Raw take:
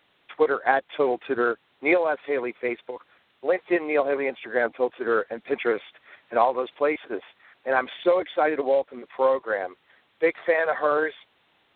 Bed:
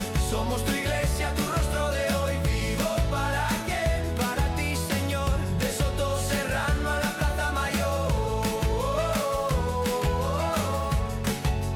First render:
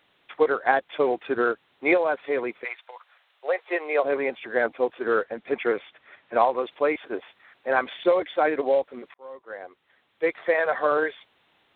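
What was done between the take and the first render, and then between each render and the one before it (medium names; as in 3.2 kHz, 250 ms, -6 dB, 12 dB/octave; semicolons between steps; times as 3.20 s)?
2.63–4.03 s: high-pass 860 Hz -> 370 Hz 24 dB/octave; 5.25–6.34 s: distance through air 110 m; 9.14–10.62 s: fade in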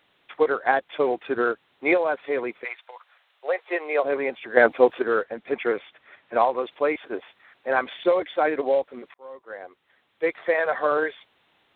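4.57–5.02 s: gain +7.5 dB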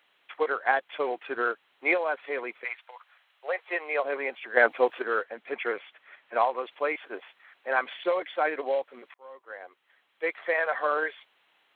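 high-pass 950 Hz 6 dB/octave; band-stop 3.6 kHz, Q 12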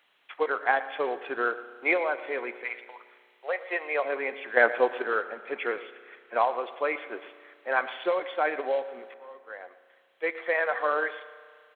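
delay 118 ms -17.5 dB; spring tank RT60 2 s, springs 33 ms, chirp 25 ms, DRR 14 dB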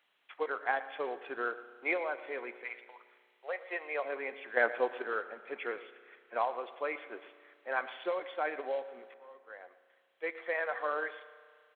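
trim -7.5 dB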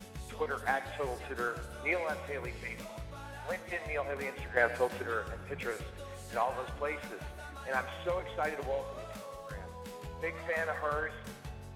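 add bed -19 dB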